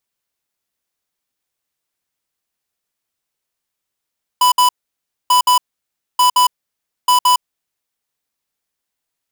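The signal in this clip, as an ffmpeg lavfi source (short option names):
-f lavfi -i "aevalsrc='0.282*(2*lt(mod(994*t,1),0.5)-1)*clip(min(mod(mod(t,0.89),0.17),0.11-mod(mod(t,0.89),0.17))/0.005,0,1)*lt(mod(t,0.89),0.34)':d=3.56:s=44100"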